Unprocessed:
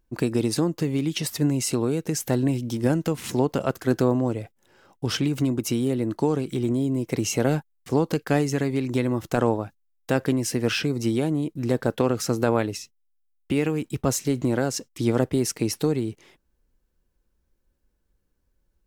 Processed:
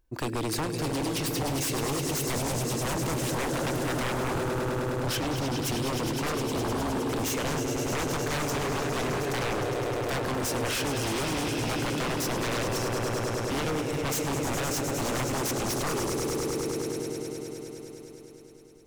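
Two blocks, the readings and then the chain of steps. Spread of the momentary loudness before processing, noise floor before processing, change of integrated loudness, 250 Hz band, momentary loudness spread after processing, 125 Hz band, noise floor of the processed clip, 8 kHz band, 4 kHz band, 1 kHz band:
4 LU, −72 dBFS, −4.5 dB, −7.0 dB, 3 LU, −5.0 dB, −44 dBFS, +0.5 dB, +1.0 dB, +2.0 dB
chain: parametric band 200 Hz −8.5 dB 0.78 octaves
hum removal 85.54 Hz, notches 5
on a send: echo that builds up and dies away 103 ms, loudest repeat 5, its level −10.5 dB
on the sum: wave folding −24 dBFS

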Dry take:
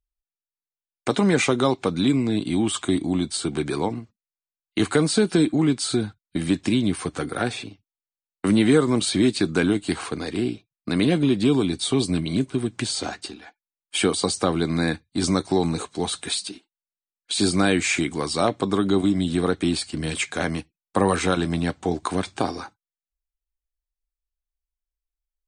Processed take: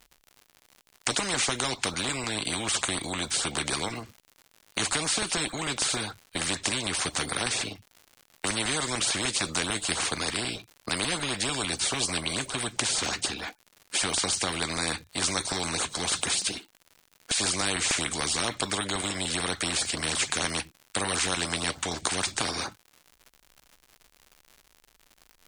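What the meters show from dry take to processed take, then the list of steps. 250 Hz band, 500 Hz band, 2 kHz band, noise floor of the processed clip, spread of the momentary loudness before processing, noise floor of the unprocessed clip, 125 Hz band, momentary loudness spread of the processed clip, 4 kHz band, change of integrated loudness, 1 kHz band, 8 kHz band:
−15.0 dB, −11.5 dB, −0.5 dB, −66 dBFS, 9 LU, below −85 dBFS, −11.5 dB, 6 LU, +1.5 dB, −4.5 dB, −3.5 dB, +4.5 dB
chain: auto-filter notch saw up 6.7 Hz 320–3,300 Hz
surface crackle 130 per second −54 dBFS
every bin compressed towards the loudest bin 4 to 1

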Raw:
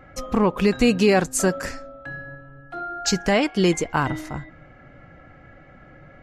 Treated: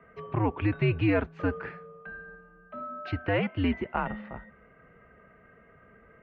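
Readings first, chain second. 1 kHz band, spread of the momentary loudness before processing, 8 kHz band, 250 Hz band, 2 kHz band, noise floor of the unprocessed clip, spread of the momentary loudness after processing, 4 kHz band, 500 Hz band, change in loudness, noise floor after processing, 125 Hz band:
−8.5 dB, 18 LU, below −40 dB, −8.5 dB, −7.5 dB, −49 dBFS, 18 LU, −15.5 dB, −10.5 dB, −8.5 dB, −58 dBFS, −1.5 dB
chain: single-sideband voice off tune −100 Hz 180–3,000 Hz
level −7 dB

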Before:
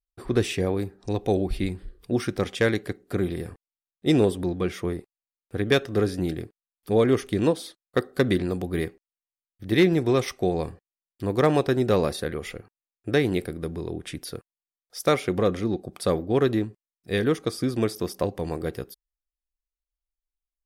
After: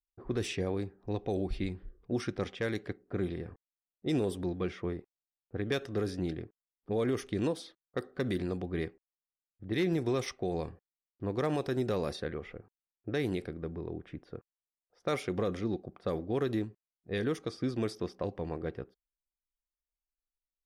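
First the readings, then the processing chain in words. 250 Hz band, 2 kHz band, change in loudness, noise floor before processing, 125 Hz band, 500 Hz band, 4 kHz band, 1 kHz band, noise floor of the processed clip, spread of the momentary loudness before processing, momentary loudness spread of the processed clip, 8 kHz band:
−9.0 dB, −10.0 dB, −9.5 dB, below −85 dBFS, −8.5 dB, −9.5 dB, −10.0 dB, −10.0 dB, below −85 dBFS, 14 LU, 12 LU, −10.0 dB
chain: low-pass that shuts in the quiet parts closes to 780 Hz, open at −18 dBFS
brickwall limiter −15 dBFS, peak gain reduction 5.5 dB
parametric band 5,600 Hz +3 dB 0.28 octaves
level −7 dB

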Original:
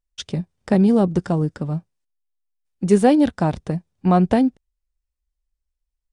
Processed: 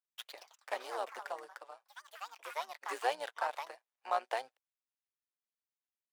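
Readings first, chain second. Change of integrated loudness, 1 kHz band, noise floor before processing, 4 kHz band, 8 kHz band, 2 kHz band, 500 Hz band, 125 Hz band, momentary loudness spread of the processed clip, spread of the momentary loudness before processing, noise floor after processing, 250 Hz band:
−20.0 dB, −11.0 dB, −81 dBFS, −9.0 dB, −13.5 dB, −6.5 dB, −19.5 dB, below −40 dB, 17 LU, 13 LU, below −85 dBFS, below −40 dB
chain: running median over 9 samples
Bessel high-pass filter 1,000 Hz, order 8
amplitude modulation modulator 120 Hz, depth 50%
delay with pitch and tempo change per echo 148 ms, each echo +4 semitones, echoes 3, each echo −6 dB
level −4 dB

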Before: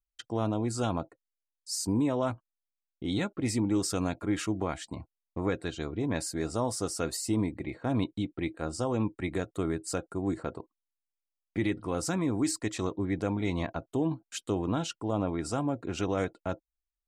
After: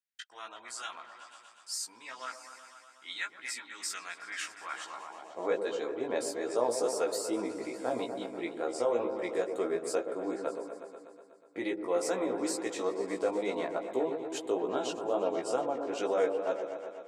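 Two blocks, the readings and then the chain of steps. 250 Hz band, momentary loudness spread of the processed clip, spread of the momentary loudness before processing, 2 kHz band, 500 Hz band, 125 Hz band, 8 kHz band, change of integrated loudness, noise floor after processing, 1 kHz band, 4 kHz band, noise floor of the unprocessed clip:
−8.0 dB, 15 LU, 8 LU, 0.0 dB, +3.0 dB, −23.0 dB, −3.0 dB, −2.0 dB, −57 dBFS, 0.0 dB, −2.0 dB, below −85 dBFS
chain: echo whose low-pass opens from repeat to repeat 122 ms, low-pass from 750 Hz, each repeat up 1 octave, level −6 dB
chorus effect 2.3 Hz, delay 15 ms, depth 2.3 ms
high-pass filter sweep 1,700 Hz → 480 Hz, 0:04.60–0:05.58

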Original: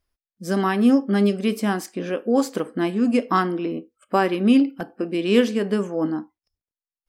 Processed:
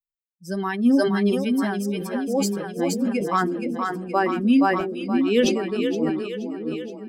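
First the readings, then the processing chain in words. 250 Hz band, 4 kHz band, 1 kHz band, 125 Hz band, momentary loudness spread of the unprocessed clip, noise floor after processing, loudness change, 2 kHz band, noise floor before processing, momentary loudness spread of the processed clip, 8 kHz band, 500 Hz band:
−1.0 dB, 0.0 dB, 0.0 dB, −1.5 dB, 10 LU, below −85 dBFS, −1.0 dB, +0.5 dB, below −85 dBFS, 10 LU, +4.5 dB, −1.0 dB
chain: spectral dynamics exaggerated over time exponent 2
echo with a time of its own for lows and highs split 430 Hz, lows 644 ms, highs 473 ms, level −5 dB
level that may fall only so fast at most 44 dB per second

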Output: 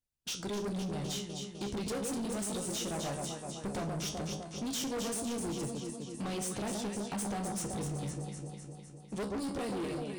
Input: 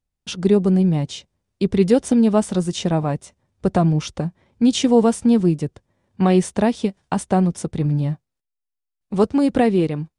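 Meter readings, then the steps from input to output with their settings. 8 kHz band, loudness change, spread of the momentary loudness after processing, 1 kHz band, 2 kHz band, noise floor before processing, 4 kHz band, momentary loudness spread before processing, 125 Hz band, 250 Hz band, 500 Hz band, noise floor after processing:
−4.0 dB, −17.5 dB, 6 LU, −15.0 dB, −11.0 dB, −82 dBFS, −9.0 dB, 12 LU, −18.5 dB, −19.0 dB, −18.0 dB, −50 dBFS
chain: dynamic equaliser 1,500 Hz, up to −6 dB, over −37 dBFS, Q 0.94
harmonic and percussive parts rebalanced harmonic −9 dB
high-shelf EQ 3,500 Hz +9.5 dB
in parallel at +2 dB: brickwall limiter −16.5 dBFS, peak gain reduction 10.5 dB
on the sum: tuned comb filter 68 Hz, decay 0.3 s, harmonics all, mix 80%
on a send: delay that swaps between a low-pass and a high-pass 127 ms, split 1,100 Hz, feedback 79%, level −5.5 dB
on the sum: gain into a clipping stage and back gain 25.5 dB
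level −8 dB

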